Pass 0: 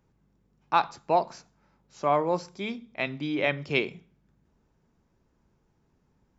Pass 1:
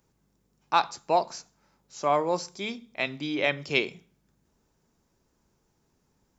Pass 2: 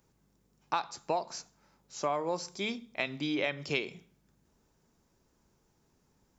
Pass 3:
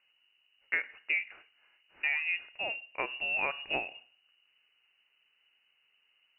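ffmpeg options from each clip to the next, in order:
-af "bass=f=250:g=-4,treble=f=4000:g=11"
-af "acompressor=threshold=0.0398:ratio=5"
-af "lowpass=f=2600:t=q:w=0.5098,lowpass=f=2600:t=q:w=0.6013,lowpass=f=2600:t=q:w=0.9,lowpass=f=2600:t=q:w=2.563,afreqshift=-3000"

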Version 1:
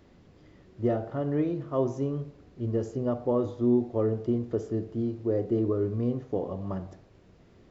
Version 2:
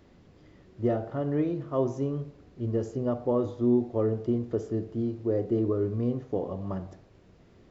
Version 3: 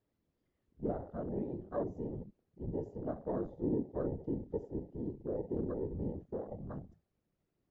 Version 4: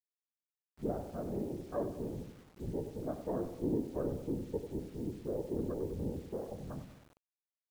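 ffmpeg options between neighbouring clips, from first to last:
-af anull
-af "afftfilt=real='hypot(re,im)*cos(2*PI*random(0))':imag='hypot(re,im)*sin(2*PI*random(1))':win_size=512:overlap=0.75,afwtdn=0.00891,volume=0.631"
-filter_complex "[0:a]asplit=2[s0][s1];[s1]aecho=0:1:96|192|288|384|480|576:0.266|0.144|0.0776|0.0419|0.0226|0.0122[s2];[s0][s2]amix=inputs=2:normalize=0,acrusher=bits=9:mix=0:aa=0.000001"

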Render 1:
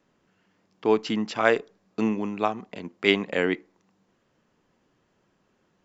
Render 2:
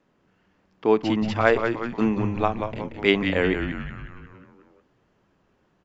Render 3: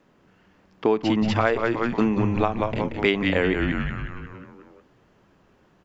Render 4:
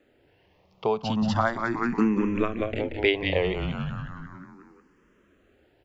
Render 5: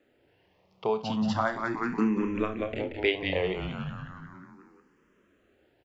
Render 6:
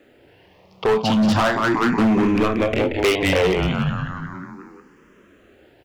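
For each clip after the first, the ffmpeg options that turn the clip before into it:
-filter_complex "[0:a]aemphasis=mode=reproduction:type=50kf,asplit=8[s0][s1][s2][s3][s4][s5][s6][s7];[s1]adelay=181,afreqshift=-110,volume=0.473[s8];[s2]adelay=362,afreqshift=-220,volume=0.266[s9];[s3]adelay=543,afreqshift=-330,volume=0.148[s10];[s4]adelay=724,afreqshift=-440,volume=0.0832[s11];[s5]adelay=905,afreqshift=-550,volume=0.0468[s12];[s6]adelay=1086,afreqshift=-660,volume=0.026[s13];[s7]adelay=1267,afreqshift=-770,volume=0.0146[s14];[s0][s8][s9][s10][s11][s12][s13][s14]amix=inputs=8:normalize=0,volume=1.26"
-af "acompressor=threshold=0.0631:ratio=5,volume=2.11"
-filter_complex "[0:a]asplit=2[s0][s1];[s1]afreqshift=0.36[s2];[s0][s2]amix=inputs=2:normalize=1"
-filter_complex "[0:a]lowshelf=f=69:g=-8.5,asplit=2[s0][s1];[s1]aecho=0:1:32|74:0.282|0.133[s2];[s0][s2]amix=inputs=2:normalize=0,volume=0.668"
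-af "acontrast=66,asoftclip=type=hard:threshold=0.0841,volume=2.37"

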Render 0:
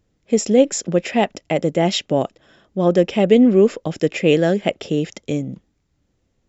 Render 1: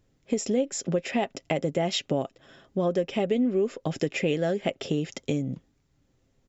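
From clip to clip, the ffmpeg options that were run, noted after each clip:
-af "aecho=1:1:7.5:0.32,acompressor=threshold=0.0708:ratio=4,volume=0.891"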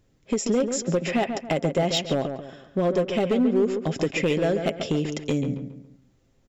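-filter_complex "[0:a]asoftclip=type=hard:threshold=0.106,asplit=2[s0][s1];[s1]adelay=139,lowpass=f=2300:p=1,volume=0.447,asplit=2[s2][s3];[s3]adelay=139,lowpass=f=2300:p=1,volume=0.38,asplit=2[s4][s5];[s5]adelay=139,lowpass=f=2300:p=1,volume=0.38,asplit=2[s6][s7];[s7]adelay=139,lowpass=f=2300:p=1,volume=0.38[s8];[s2][s4][s6][s8]amix=inputs=4:normalize=0[s9];[s0][s9]amix=inputs=2:normalize=0,volume=1.41"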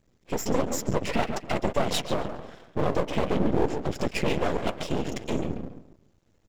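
-af "afftfilt=real='hypot(re,im)*cos(2*PI*random(0))':imag='hypot(re,im)*sin(2*PI*random(1))':win_size=512:overlap=0.75,aeval=exprs='max(val(0),0)':c=same,volume=2.24"

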